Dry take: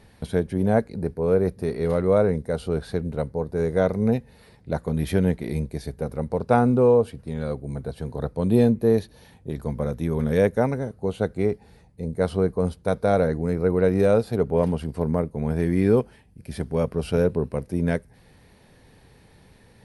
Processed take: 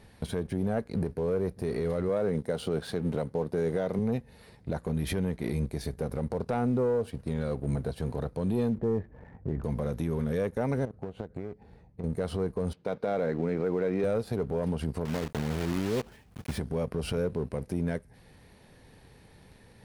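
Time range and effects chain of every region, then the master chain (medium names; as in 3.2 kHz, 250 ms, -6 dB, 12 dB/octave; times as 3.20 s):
2.09–3.99 s: high-pass 130 Hz + peaking EQ 3.2 kHz +6 dB 0.23 oct
8.78–9.64 s: Chebyshev low-pass 2 kHz, order 4 + tilt EQ -1.5 dB/octave
10.85–12.04 s: low-pass 1.2 kHz 6 dB/octave + compression 16:1, threshold -35 dBFS
12.73–14.04 s: band-pass 180–4200 Hz + peaking EQ 2.5 kHz +4.5 dB 0.65 oct
15.05–16.59 s: block-companded coder 3-bit + treble shelf 6.1 kHz -6.5 dB + compression 3:1, threshold -30 dBFS
whole clip: waveshaping leveller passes 1; compression, threshold -22 dBFS; peak limiter -20.5 dBFS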